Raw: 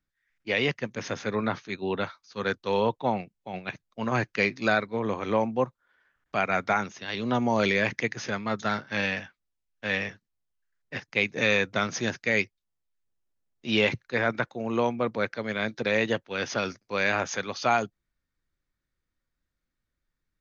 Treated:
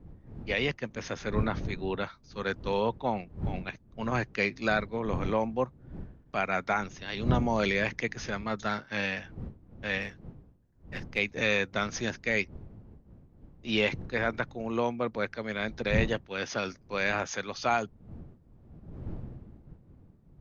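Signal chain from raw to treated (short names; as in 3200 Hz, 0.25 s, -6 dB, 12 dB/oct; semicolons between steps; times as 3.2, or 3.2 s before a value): 10.02–11.19 half-wave gain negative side -3 dB; wind noise 160 Hz -37 dBFS; gain -3.5 dB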